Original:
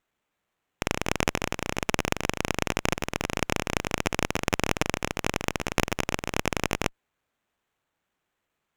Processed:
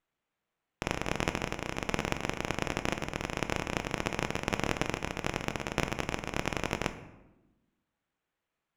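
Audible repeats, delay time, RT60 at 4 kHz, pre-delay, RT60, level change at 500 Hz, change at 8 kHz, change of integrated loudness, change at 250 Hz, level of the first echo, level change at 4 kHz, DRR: none, none, 0.60 s, 6 ms, 1.0 s, -5.0 dB, -8.5 dB, -5.5 dB, -4.5 dB, none, -6.0 dB, 8.5 dB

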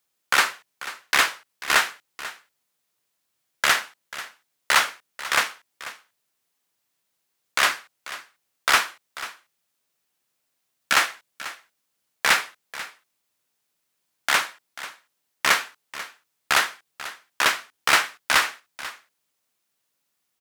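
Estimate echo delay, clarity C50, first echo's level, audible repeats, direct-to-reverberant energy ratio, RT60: 0.49 s, none, -15.5 dB, 1, none, none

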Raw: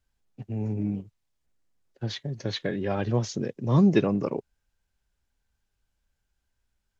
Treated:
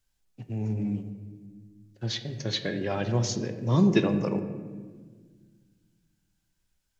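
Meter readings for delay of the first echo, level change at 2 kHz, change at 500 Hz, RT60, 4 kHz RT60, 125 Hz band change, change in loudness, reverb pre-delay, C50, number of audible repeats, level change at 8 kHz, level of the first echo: none, +1.5 dB, -1.5 dB, 1.6 s, 0.95 s, -0.5 dB, -1.0 dB, 3 ms, 9.5 dB, none, n/a, none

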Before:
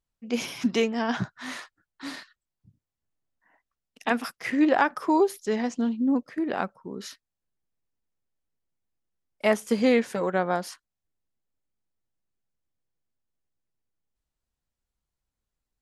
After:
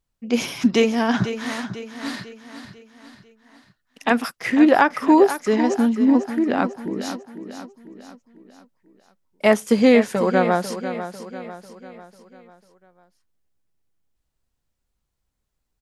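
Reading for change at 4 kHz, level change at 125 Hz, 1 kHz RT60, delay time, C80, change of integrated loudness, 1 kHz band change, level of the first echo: +6.0 dB, +8.0 dB, none, 0.496 s, none, +6.5 dB, +6.5 dB, -11.0 dB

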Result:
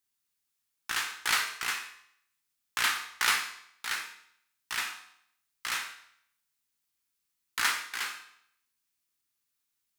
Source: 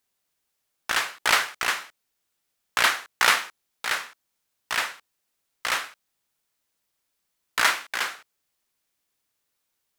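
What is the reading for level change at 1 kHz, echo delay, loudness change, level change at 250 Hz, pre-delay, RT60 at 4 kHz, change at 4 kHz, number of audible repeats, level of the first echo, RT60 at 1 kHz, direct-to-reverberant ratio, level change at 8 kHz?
-8.5 dB, none, -6.5 dB, -8.5 dB, 6 ms, 0.65 s, -5.5 dB, none, none, 0.70 s, 4.0 dB, -4.0 dB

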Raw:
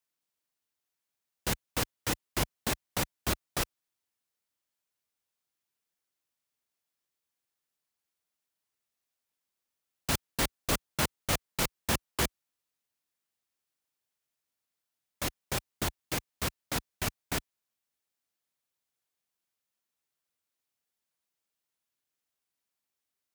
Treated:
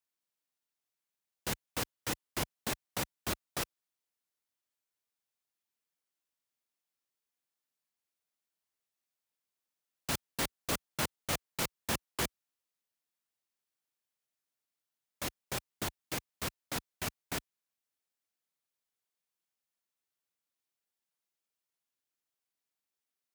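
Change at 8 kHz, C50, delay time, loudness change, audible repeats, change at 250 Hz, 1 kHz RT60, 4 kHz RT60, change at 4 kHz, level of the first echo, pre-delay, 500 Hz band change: -4.0 dB, none, none, -4.5 dB, none, -4.5 dB, none, none, -4.0 dB, none, none, -4.0 dB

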